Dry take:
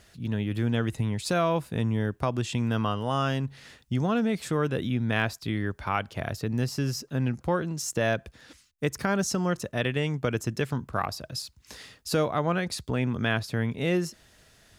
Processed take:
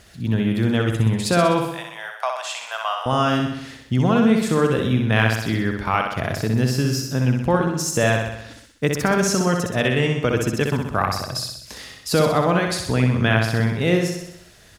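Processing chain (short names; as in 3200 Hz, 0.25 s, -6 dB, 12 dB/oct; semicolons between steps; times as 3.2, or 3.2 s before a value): 1.66–3.06 elliptic high-pass 650 Hz, stop band 50 dB; feedback echo 63 ms, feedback 59%, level -4.5 dB; gain +6.5 dB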